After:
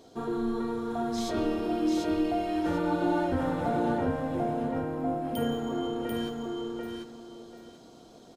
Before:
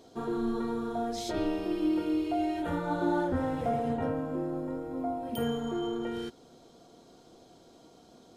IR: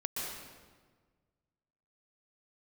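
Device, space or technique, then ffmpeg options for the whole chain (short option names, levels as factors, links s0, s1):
saturated reverb return: -filter_complex "[0:a]asplit=2[s0][s1];[1:a]atrim=start_sample=2205[s2];[s1][s2]afir=irnorm=-1:irlink=0,asoftclip=type=tanh:threshold=0.0266,volume=0.2[s3];[s0][s3]amix=inputs=2:normalize=0,aecho=1:1:740|1480|2220:0.708|0.156|0.0343"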